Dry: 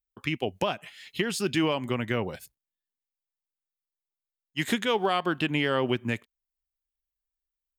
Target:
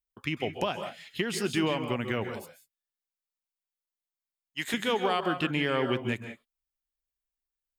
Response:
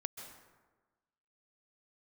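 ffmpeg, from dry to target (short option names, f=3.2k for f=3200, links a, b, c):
-filter_complex "[0:a]asettb=1/sr,asplit=3[a][b][c];[a]atrim=end=2.244[d];[b]atrim=start=2.24:end=4.74,asetpts=PTS-STARTPTS,afade=t=in:d=0.004:c=qsin,afade=t=out:st=2.496:d=0.004:c=qsin,lowshelf=f=400:g=-11.5[e];[c]atrim=start=4.736[f];[d][e]acrossfade=d=0.004:c1=hsin:c2=qsin[g];[g][f]acrossfade=d=0.004:c1=qsin:c2=hsin[h];[1:a]atrim=start_sample=2205,afade=t=out:st=0.25:d=0.01,atrim=end_sample=11466[i];[h][i]afir=irnorm=-1:irlink=0"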